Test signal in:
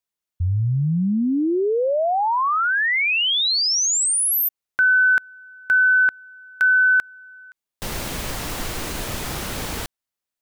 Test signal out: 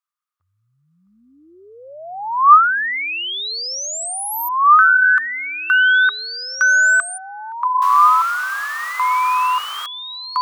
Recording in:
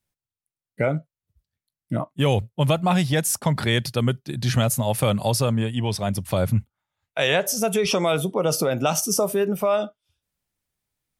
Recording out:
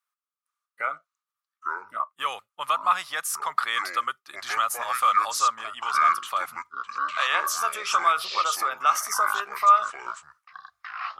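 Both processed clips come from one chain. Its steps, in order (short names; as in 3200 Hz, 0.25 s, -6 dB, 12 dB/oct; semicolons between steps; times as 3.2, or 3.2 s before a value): echoes that change speed 0.456 s, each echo -7 st, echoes 2; resonant high-pass 1200 Hz, resonance Q 12; gain -6 dB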